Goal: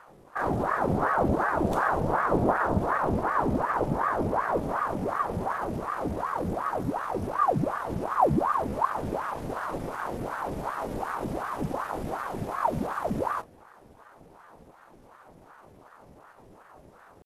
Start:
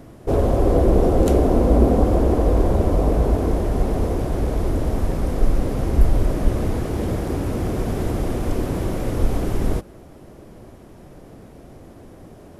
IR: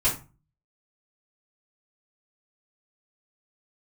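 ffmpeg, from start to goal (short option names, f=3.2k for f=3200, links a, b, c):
-af "atempo=0.73,aeval=exprs='val(0)*sin(2*PI*670*n/s+670*0.8/2.7*sin(2*PI*2.7*n/s))':c=same,volume=-7dB"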